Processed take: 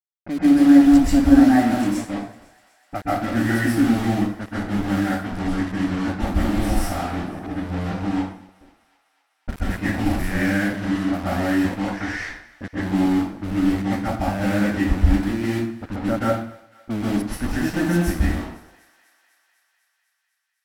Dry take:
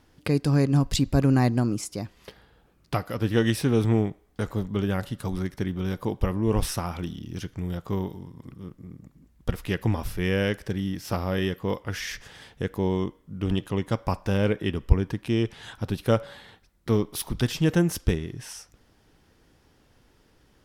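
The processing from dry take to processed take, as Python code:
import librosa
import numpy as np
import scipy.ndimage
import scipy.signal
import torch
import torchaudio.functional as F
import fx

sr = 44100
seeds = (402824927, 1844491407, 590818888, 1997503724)

p1 = fx.peak_eq(x, sr, hz=390.0, db=-14.5, octaves=0.25)
p2 = fx.fixed_phaser(p1, sr, hz=690.0, stages=8)
p3 = fx.quant_dither(p2, sr, seeds[0], bits=6, dither='none')
p4 = fx.leveller(p3, sr, passes=1)
p5 = fx.env_lowpass(p4, sr, base_hz=300.0, full_db=-24.5)
p6 = fx.high_shelf(p5, sr, hz=3000.0, db=-9.5)
p7 = fx.notch(p6, sr, hz=6700.0, q=26.0)
p8 = p7 + fx.echo_thinned(p7, sr, ms=250, feedback_pct=74, hz=640.0, wet_db=-22.0, dry=0)
p9 = fx.rev_plate(p8, sr, seeds[1], rt60_s=0.58, hf_ratio=0.8, predelay_ms=115, drr_db=-7.0)
y = F.gain(torch.from_numpy(p9), -1.5).numpy()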